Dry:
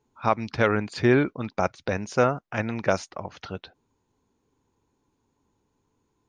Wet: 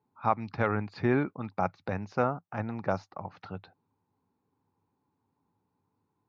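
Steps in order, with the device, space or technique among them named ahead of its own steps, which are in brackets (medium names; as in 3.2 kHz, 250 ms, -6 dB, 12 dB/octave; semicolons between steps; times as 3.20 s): 2.22–3.18 s: peaking EQ 2.3 kHz -5.5 dB 0.98 oct; guitar cabinet (cabinet simulation 93–4500 Hz, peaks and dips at 100 Hz +9 dB, 170 Hz +8 dB, 260 Hz +3 dB, 820 Hz +8 dB, 1.2 kHz +5 dB, 3.2 kHz -9 dB); trim -8.5 dB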